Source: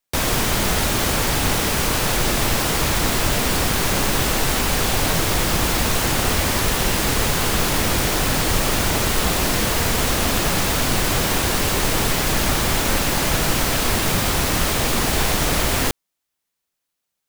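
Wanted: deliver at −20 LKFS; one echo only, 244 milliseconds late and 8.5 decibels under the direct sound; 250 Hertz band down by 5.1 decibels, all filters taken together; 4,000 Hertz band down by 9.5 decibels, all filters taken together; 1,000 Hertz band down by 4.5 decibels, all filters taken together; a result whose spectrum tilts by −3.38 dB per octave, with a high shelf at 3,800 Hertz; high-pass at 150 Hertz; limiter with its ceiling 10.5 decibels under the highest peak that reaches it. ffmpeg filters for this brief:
ffmpeg -i in.wav -af "highpass=150,equalizer=frequency=250:width_type=o:gain=-5.5,equalizer=frequency=1000:width_type=o:gain=-4.5,highshelf=frequency=3800:gain=-7.5,equalizer=frequency=4000:width_type=o:gain=-7.5,alimiter=limit=-23dB:level=0:latency=1,aecho=1:1:244:0.376,volume=11dB" out.wav

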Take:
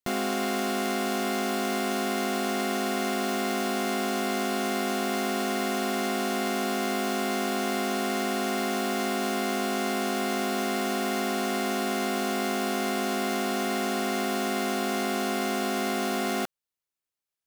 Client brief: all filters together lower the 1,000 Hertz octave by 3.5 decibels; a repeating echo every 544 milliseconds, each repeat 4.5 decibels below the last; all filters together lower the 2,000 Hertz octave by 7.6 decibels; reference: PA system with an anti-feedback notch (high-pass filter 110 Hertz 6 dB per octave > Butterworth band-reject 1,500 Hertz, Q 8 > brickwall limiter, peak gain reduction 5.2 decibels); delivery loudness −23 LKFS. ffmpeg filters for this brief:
ffmpeg -i in.wav -af "highpass=frequency=110:poles=1,asuperstop=centerf=1500:order=8:qfactor=8,equalizer=frequency=1000:width_type=o:gain=-4,equalizer=frequency=2000:width_type=o:gain=-6.5,aecho=1:1:544|1088|1632|2176|2720|3264|3808|4352|4896:0.596|0.357|0.214|0.129|0.0772|0.0463|0.0278|0.0167|0.01,volume=6.5dB,alimiter=limit=-13.5dB:level=0:latency=1" out.wav

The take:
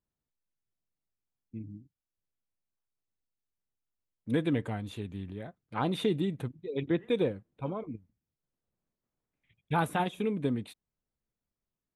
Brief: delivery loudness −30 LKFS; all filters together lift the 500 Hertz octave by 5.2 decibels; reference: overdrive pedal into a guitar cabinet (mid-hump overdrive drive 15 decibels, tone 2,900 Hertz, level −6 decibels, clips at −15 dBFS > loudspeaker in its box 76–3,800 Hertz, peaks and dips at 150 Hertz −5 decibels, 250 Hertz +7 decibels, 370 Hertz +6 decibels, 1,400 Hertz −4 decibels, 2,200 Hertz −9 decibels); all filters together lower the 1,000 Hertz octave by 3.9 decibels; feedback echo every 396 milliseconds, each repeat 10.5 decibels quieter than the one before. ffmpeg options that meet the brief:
ffmpeg -i in.wav -filter_complex "[0:a]equalizer=frequency=500:width_type=o:gain=4,equalizer=frequency=1000:width_type=o:gain=-6.5,aecho=1:1:396|792|1188:0.299|0.0896|0.0269,asplit=2[link_01][link_02];[link_02]highpass=frequency=720:poles=1,volume=15dB,asoftclip=type=tanh:threshold=-15dB[link_03];[link_01][link_03]amix=inputs=2:normalize=0,lowpass=frequency=2900:poles=1,volume=-6dB,highpass=76,equalizer=frequency=150:width_type=q:width=4:gain=-5,equalizer=frequency=250:width_type=q:width=4:gain=7,equalizer=frequency=370:width_type=q:width=4:gain=6,equalizer=frequency=1400:width_type=q:width=4:gain=-4,equalizer=frequency=2200:width_type=q:width=4:gain=-9,lowpass=frequency=3800:width=0.5412,lowpass=frequency=3800:width=1.3066,volume=-2.5dB" out.wav

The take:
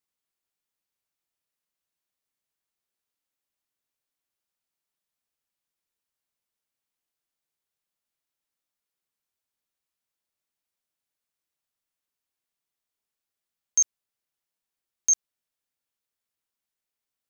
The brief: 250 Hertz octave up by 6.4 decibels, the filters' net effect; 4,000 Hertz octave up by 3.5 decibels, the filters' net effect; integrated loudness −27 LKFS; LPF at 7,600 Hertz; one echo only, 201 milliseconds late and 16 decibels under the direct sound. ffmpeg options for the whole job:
ffmpeg -i in.wav -af "lowpass=7600,equalizer=frequency=250:width_type=o:gain=8,equalizer=frequency=4000:width_type=o:gain=5.5,aecho=1:1:201:0.158,volume=-3dB" out.wav

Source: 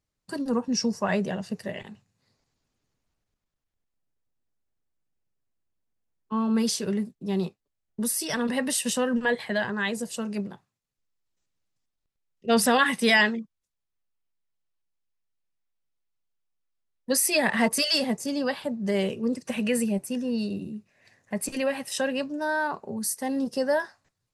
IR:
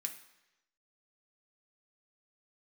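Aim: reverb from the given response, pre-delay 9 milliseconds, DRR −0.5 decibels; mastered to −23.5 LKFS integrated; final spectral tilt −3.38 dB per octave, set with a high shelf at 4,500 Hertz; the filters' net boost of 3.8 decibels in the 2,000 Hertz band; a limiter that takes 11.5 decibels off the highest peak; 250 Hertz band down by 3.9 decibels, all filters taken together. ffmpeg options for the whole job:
-filter_complex "[0:a]equalizer=frequency=250:width_type=o:gain=-4.5,equalizer=frequency=2000:width_type=o:gain=5,highshelf=frequency=4500:gain=-3,alimiter=limit=-17dB:level=0:latency=1,asplit=2[link_01][link_02];[1:a]atrim=start_sample=2205,adelay=9[link_03];[link_02][link_03]afir=irnorm=-1:irlink=0,volume=2.5dB[link_04];[link_01][link_04]amix=inputs=2:normalize=0,volume=2dB"

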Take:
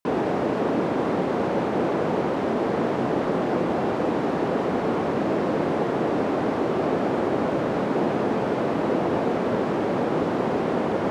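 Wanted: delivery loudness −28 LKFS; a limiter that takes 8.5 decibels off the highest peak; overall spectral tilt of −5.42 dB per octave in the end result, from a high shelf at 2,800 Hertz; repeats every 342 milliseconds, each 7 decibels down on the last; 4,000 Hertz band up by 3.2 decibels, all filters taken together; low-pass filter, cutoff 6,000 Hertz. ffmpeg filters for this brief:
ffmpeg -i in.wav -af "lowpass=6000,highshelf=frequency=2800:gain=-4,equalizer=frequency=4000:width_type=o:gain=8,alimiter=limit=-19.5dB:level=0:latency=1,aecho=1:1:342|684|1026|1368|1710:0.447|0.201|0.0905|0.0407|0.0183,volume=-1dB" out.wav

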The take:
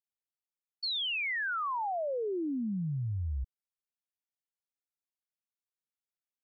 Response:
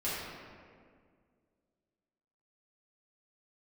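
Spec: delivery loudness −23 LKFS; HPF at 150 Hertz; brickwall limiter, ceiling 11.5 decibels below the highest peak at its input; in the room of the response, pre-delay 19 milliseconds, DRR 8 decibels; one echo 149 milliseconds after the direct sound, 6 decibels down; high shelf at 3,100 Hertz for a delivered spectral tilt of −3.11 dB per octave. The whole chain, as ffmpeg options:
-filter_complex "[0:a]highpass=150,highshelf=frequency=3100:gain=7.5,alimiter=level_in=12.5dB:limit=-24dB:level=0:latency=1,volume=-12.5dB,aecho=1:1:149:0.501,asplit=2[link_01][link_02];[1:a]atrim=start_sample=2205,adelay=19[link_03];[link_02][link_03]afir=irnorm=-1:irlink=0,volume=-14.5dB[link_04];[link_01][link_04]amix=inputs=2:normalize=0,volume=15dB"

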